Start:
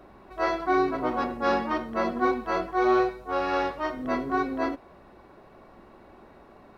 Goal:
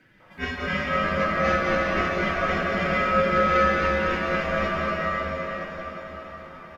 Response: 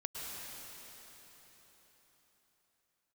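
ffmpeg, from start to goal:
-filter_complex "[0:a]flanger=delay=4.8:depth=9.5:regen=38:speed=0.54:shape=sinusoidal,acrossover=split=540[link_01][link_02];[link_01]adelay=200[link_03];[link_03][link_02]amix=inputs=2:normalize=0,aeval=exprs='val(0)*sin(2*PI*910*n/s)':channel_layout=same[link_04];[1:a]atrim=start_sample=2205,asetrate=32634,aresample=44100[link_05];[link_04][link_05]afir=irnorm=-1:irlink=0,volume=7dB"

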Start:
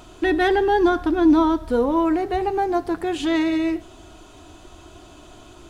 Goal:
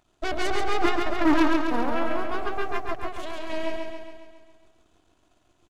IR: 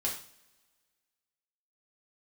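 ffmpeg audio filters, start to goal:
-filter_complex "[0:a]aeval=exprs='0.398*(cos(1*acos(clip(val(0)/0.398,-1,1)))-cos(1*PI/2))+0.178*(cos(3*acos(clip(val(0)/0.398,-1,1)))-cos(3*PI/2))+0.0316*(cos(5*acos(clip(val(0)/0.398,-1,1)))-cos(5*PI/2))+0.0398*(cos(6*acos(clip(val(0)/0.398,-1,1)))-cos(6*PI/2))':channel_layout=same,asettb=1/sr,asplit=3[link_01][link_02][link_03];[link_01]atrim=end=3.054[link_04];[link_02]atrim=start=3.05:end=3.5,asetpts=PTS-STARTPTS,afade=type=in:duration=0.004:curve=qsin,afade=type=out:start_time=0.446:duration=0.004:curve=qsin,acompressor=threshold=-31dB:ratio=6[link_05];[link_03]atrim=start=3.496[link_06];[link_04][link_05]acrossfade=duration=0.004:curve1=hsin:curve2=qsin[link_07];[link_07][link_06]acrossfade=duration=0.004:curve1=qsin:curve2=hsin,volume=14dB,asoftclip=hard,volume=-14dB,asplit=2[link_08][link_09];[link_09]aecho=0:1:137|274|411|548|685|822|959|1096:0.631|0.366|0.212|0.123|0.0714|0.0414|0.024|0.0139[link_10];[link_08][link_10]amix=inputs=2:normalize=0"

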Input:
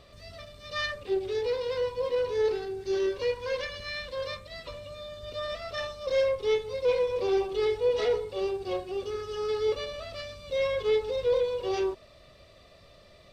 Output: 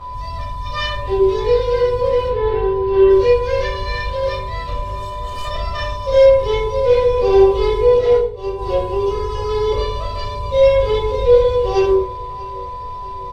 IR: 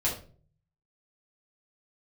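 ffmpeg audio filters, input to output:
-filter_complex "[0:a]asettb=1/sr,asplit=3[link_01][link_02][link_03];[link_01]atrim=end=2.284[link_04];[link_02]atrim=start=2.28:end=3.1,asetpts=PTS-STARTPTS,afade=type=in:duration=0.004:curve=qsin,afade=type=out:start_time=0.816:duration=0.004:curve=qsin,lowpass=frequency=3200:width=0.5412,lowpass=frequency=3200:width=1.3066[link_05];[link_03]atrim=start=3.096[link_06];[link_04][link_05]acrossfade=duration=0.004:curve1=hsin:curve2=qsin[link_07];[link_07][link_06]acrossfade=duration=0.004:curve1=qsin:curve2=hsin,asettb=1/sr,asplit=3[link_08][link_09][link_10];[link_08]atrim=end=4.794[link_11];[link_09]atrim=start=4.79:end=5.45,asetpts=PTS-STARTPTS,afade=type=in:duration=0.004:curve=qsin,afade=type=out:start_time=0.656:duration=0.004:curve=qsin,aeval=exprs='0.0133*(abs(mod(val(0)/0.0133+3,4)-2)-1)':channel_layout=same[link_12];[link_10]atrim=start=5.446[link_13];[link_11][link_12]acrossfade=duration=0.004:curve1=hsin:curve2=qsin[link_14];[link_14][link_13]acrossfade=duration=0.004:curve1=qsin:curve2=hsin,aeval=exprs='val(0)+0.0126*sin(2*PI*1000*n/s)':channel_layout=same,aecho=1:1:639|1278|1917|2556:0.0794|0.0429|0.0232|0.0125,asettb=1/sr,asplit=3[link_15][link_16][link_17];[link_15]atrim=end=7.974[link_18];[link_16]atrim=start=7.97:end=8.58,asetpts=PTS-STARTPTS,afade=type=in:duration=0.004:curve=qsin,afade=type=out:start_time=0.606:duration=0.004:curve=qsin,agate=range=-33dB:threshold=-22dB:ratio=3:detection=peak[link_19];[link_17]atrim=start=8.576[link_20];[link_18][link_19]acrossfade=duration=0.004:curve1=hsin:curve2=qsin[link_21];[link_21][link_20]acrossfade=duration=0.004:curve1=qsin:curve2=hsin,lowshelf=frequency=160:gain=11.5[link_22];[1:a]atrim=start_sample=2205,asetrate=34398,aresample=44100[link_23];[link_22][link_23]afir=irnorm=-1:irlink=0,volume=-1dB"

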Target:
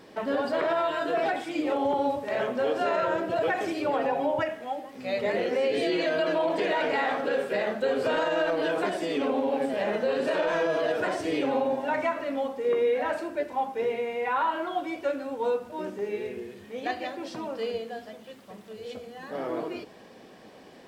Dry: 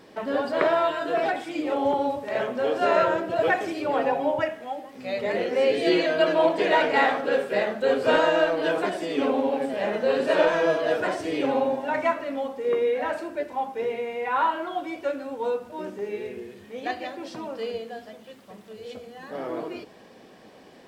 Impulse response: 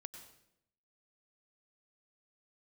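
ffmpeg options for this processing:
-af "alimiter=limit=-18dB:level=0:latency=1:release=67"

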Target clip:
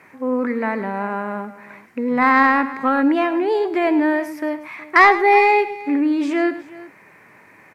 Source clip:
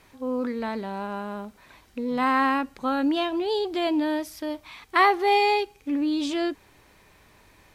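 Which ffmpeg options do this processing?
ffmpeg -i in.wav -af "highpass=frequency=130:width=0.5412,highpass=frequency=130:width=1.3066,highshelf=frequency=2700:width_type=q:width=3:gain=-8.5,acontrast=72,aecho=1:1:106|368:0.2|0.112" out.wav

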